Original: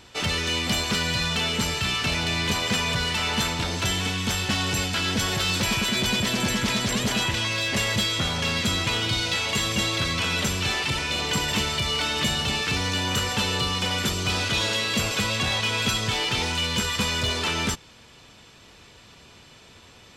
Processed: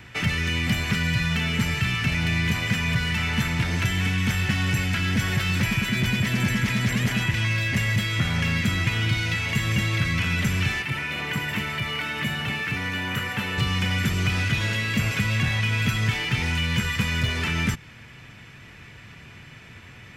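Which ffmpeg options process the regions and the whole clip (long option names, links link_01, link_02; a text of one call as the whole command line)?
ffmpeg -i in.wav -filter_complex "[0:a]asettb=1/sr,asplit=3[link_01][link_02][link_03];[link_01]atrim=end=10.824[link_04];[link_02]atrim=start=10.82:end=13.58,asetpts=PTS-STARTPTS,afade=type=in:duration=0.004:curve=qsin,afade=type=out:start_time=2.756:duration=0.004:curve=qsin,highpass=frequency=360:poles=1,equalizer=frequency=6000:width_type=o:width=1.9:gain=-9.5[link_05];[link_03]atrim=start=13.576[link_06];[link_04][link_05]acrossfade=duration=0.004:curve1=hsin:curve2=qsin[link_07];[link_07][link_06]acrossfade=duration=0.004:curve1=qsin:curve2=hsin,equalizer=frequency=125:width_type=o:width=1:gain=9,equalizer=frequency=500:width_type=o:width=1:gain=-5,equalizer=frequency=1000:width_type=o:width=1:gain=-4,equalizer=frequency=2000:width_type=o:width=1:gain=10,equalizer=frequency=4000:width_type=o:width=1:gain=-9,equalizer=frequency=8000:width_type=o:width=1:gain=-7,acrossover=split=260|3500[link_08][link_09][link_10];[link_08]acompressor=threshold=-25dB:ratio=4[link_11];[link_09]acompressor=threshold=-32dB:ratio=4[link_12];[link_10]acompressor=threshold=-38dB:ratio=4[link_13];[link_11][link_12][link_13]amix=inputs=3:normalize=0,volume=3.5dB" out.wav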